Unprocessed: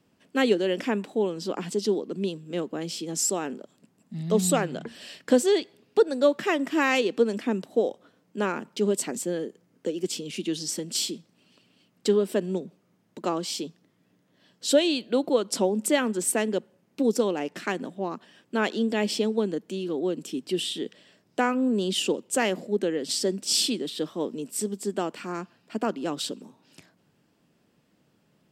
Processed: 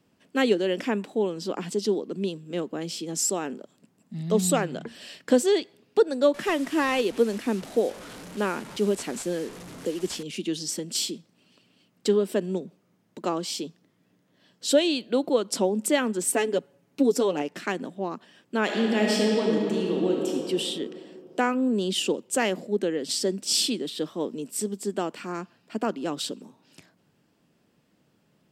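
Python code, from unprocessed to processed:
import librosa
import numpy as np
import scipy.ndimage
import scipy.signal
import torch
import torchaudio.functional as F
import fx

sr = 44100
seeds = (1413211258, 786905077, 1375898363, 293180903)

y = fx.delta_mod(x, sr, bps=64000, step_db=-36.0, at=(6.34, 10.23))
y = fx.comb(y, sr, ms=7.1, depth=0.67, at=(16.33, 17.42))
y = fx.reverb_throw(y, sr, start_s=18.63, length_s=1.67, rt60_s=2.9, drr_db=-1.5)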